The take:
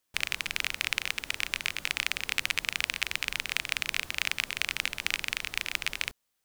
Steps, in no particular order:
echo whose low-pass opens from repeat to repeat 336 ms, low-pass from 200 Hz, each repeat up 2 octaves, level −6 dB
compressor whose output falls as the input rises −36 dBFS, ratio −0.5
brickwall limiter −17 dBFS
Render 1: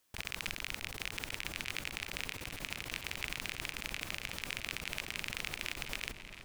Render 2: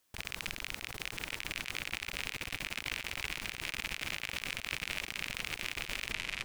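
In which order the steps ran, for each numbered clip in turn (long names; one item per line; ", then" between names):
compressor whose output falls as the input rises, then brickwall limiter, then echo whose low-pass opens from repeat to repeat
echo whose low-pass opens from repeat to repeat, then compressor whose output falls as the input rises, then brickwall limiter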